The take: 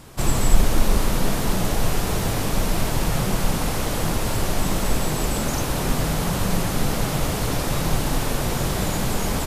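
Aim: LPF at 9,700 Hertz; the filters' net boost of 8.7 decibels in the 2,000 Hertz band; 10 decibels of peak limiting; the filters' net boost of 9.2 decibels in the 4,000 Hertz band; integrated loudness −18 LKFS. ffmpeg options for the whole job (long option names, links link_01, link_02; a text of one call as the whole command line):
ffmpeg -i in.wav -af "lowpass=9700,equalizer=frequency=2000:width_type=o:gain=8.5,equalizer=frequency=4000:width_type=o:gain=9,volume=4dB,alimiter=limit=-7dB:level=0:latency=1" out.wav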